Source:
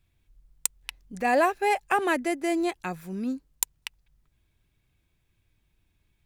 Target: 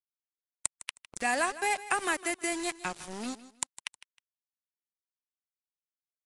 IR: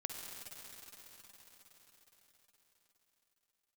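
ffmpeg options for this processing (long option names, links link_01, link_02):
-filter_complex "[0:a]aemphasis=mode=production:type=75kf,agate=range=-33dB:threshold=-45dB:ratio=3:detection=peak,equalizer=frequency=480:width=5.8:gain=-5,acrossover=split=270|930|2200|6400[link_01][link_02][link_03][link_04][link_05];[link_01]acompressor=threshold=-44dB:ratio=4[link_06];[link_02]acompressor=threshold=-38dB:ratio=4[link_07];[link_03]acompressor=threshold=-28dB:ratio=4[link_08];[link_04]acompressor=threshold=-42dB:ratio=4[link_09];[link_05]acompressor=threshold=-34dB:ratio=4[link_10];[link_06][link_07][link_08][link_09][link_10]amix=inputs=5:normalize=0,aeval=exprs='val(0)*gte(abs(val(0)),0.0178)':channel_layout=same,aecho=1:1:157|314:0.158|0.0396" -ar 22050 -c:a libvorbis -b:a 64k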